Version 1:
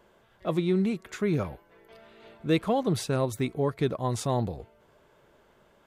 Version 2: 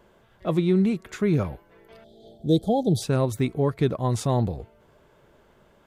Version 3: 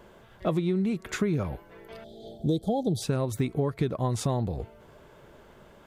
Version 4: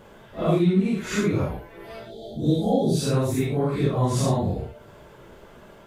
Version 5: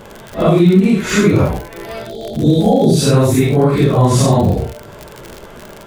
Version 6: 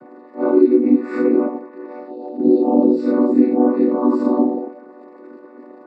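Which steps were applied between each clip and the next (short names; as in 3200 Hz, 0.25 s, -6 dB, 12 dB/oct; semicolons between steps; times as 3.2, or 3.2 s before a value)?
spectral gain 2.04–3.02, 850–3100 Hz -29 dB; low shelf 280 Hz +5.5 dB; gain +1.5 dB
compressor 10:1, threshold -28 dBFS, peak gain reduction 13 dB; gain +5 dB
phase scrambler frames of 0.2 s; gain +5.5 dB
crackle 73/s -31 dBFS; maximiser +13 dB; gain -1 dB
chord vocoder minor triad, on B3; running mean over 14 samples; gain -2.5 dB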